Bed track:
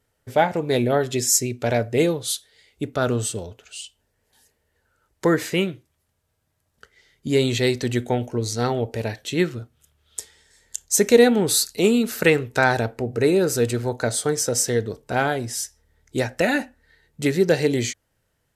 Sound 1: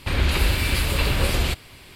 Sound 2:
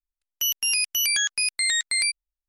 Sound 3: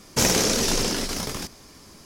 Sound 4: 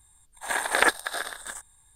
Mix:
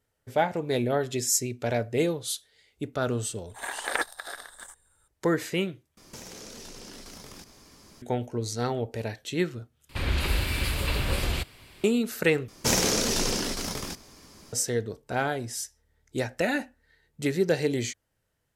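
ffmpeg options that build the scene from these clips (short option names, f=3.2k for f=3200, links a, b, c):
-filter_complex "[3:a]asplit=2[a][b];[0:a]volume=-6dB[c];[a]acompressor=threshold=-36dB:ratio=6:attack=3.2:release=140:knee=1:detection=peak[d];[c]asplit=4[e][f][g][h];[e]atrim=end=5.974[i];[d]atrim=end=2.05,asetpts=PTS-STARTPTS,volume=-5.5dB[j];[f]atrim=start=8.016:end=9.894[k];[1:a]atrim=end=1.95,asetpts=PTS-STARTPTS,volume=-6dB[l];[g]atrim=start=11.836:end=12.484[m];[b]atrim=end=2.05,asetpts=PTS-STARTPTS,volume=-3.5dB[n];[h]atrim=start=14.526[o];[4:a]atrim=end=1.95,asetpts=PTS-STARTPTS,volume=-7.5dB,afade=t=in:d=0.004:c=hsin,afade=t=out:st=1.946:d=0.004:c=hsin,adelay=138033S[p];[i][j]acrossfade=d=0.004:c1=hsin:c2=hsin[q];[q][k]acrossfade=d=0.004:c1=hsin:c2=hsin[r];[r][l]acrossfade=d=0.004:c1=hsin:c2=hsin[s];[s][m]acrossfade=d=0.004:c1=hsin:c2=hsin[t];[t][n]acrossfade=d=0.004:c1=hsin:c2=hsin[u];[u][o]acrossfade=d=0.004:c1=hsin:c2=hsin[v];[v][p]amix=inputs=2:normalize=0"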